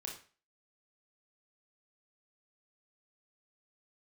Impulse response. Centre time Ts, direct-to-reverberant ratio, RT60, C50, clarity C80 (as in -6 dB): 27 ms, -1.0 dB, 0.40 s, 6.5 dB, 12.0 dB